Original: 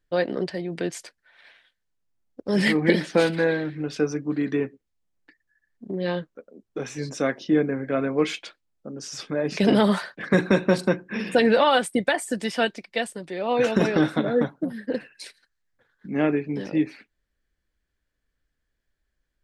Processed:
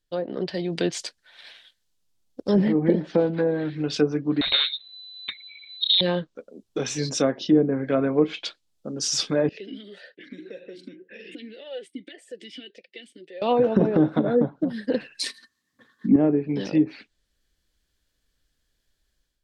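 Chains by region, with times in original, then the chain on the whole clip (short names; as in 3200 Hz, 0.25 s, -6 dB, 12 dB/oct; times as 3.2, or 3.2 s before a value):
4.41–6.01 inverted band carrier 4000 Hz + spectral compressor 2:1
9.49–13.42 compressor 4:1, threshold -31 dBFS + vowel sweep e-i 1.8 Hz
15.23–16.16 HPF 78 Hz + small resonant body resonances 250/1100/1800 Hz, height 17 dB, ringing for 40 ms
whole clip: treble ducked by the level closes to 730 Hz, closed at -17.5 dBFS; resonant high shelf 2700 Hz +7 dB, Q 1.5; AGC gain up to 9 dB; gain -5 dB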